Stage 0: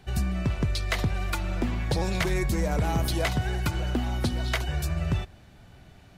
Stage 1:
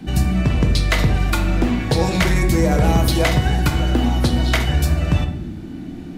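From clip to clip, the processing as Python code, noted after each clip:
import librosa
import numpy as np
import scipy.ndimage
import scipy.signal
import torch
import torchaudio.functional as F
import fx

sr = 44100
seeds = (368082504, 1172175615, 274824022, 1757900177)

y = fx.dmg_noise_band(x, sr, seeds[0], low_hz=150.0, high_hz=330.0, level_db=-42.0)
y = fx.room_shoebox(y, sr, seeds[1], volume_m3=150.0, walls='mixed', distance_m=0.53)
y = F.gain(torch.from_numpy(y), 8.0).numpy()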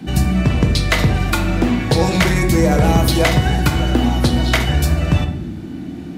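y = scipy.signal.sosfilt(scipy.signal.butter(2, 61.0, 'highpass', fs=sr, output='sos'), x)
y = F.gain(torch.from_numpy(y), 3.0).numpy()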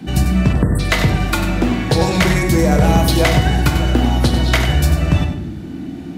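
y = fx.spec_erase(x, sr, start_s=0.53, length_s=0.26, low_hz=2000.0, high_hz=7500.0)
y = y + 10.0 ** (-9.0 / 20.0) * np.pad(y, (int(96 * sr / 1000.0), 0))[:len(y)]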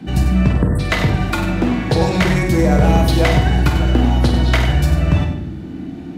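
y = fx.high_shelf(x, sr, hz=5300.0, db=-8.5)
y = fx.doubler(y, sr, ms=49.0, db=-9.5)
y = F.gain(torch.from_numpy(y), -1.0).numpy()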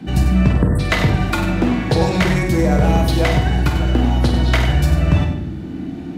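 y = fx.rider(x, sr, range_db=3, speed_s=2.0)
y = F.gain(torch.from_numpy(y), -1.0).numpy()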